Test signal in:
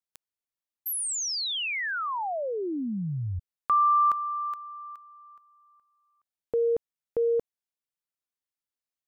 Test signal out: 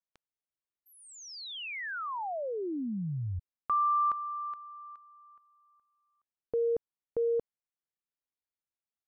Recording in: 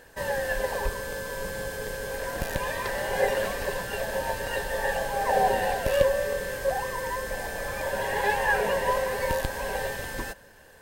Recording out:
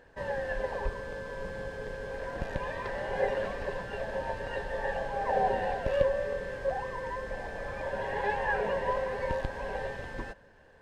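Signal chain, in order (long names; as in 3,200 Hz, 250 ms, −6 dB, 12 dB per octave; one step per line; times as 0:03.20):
head-to-tape spacing loss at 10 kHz 23 dB
level −3 dB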